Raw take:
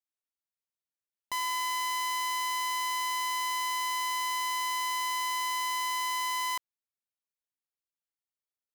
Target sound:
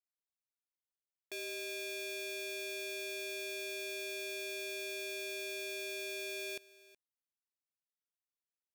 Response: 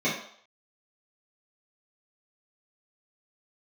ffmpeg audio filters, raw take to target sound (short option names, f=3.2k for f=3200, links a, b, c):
-af "aeval=exprs='val(0)*sin(2*PI*1400*n/s)':c=same,aecho=1:1:371:0.1,volume=-7.5dB"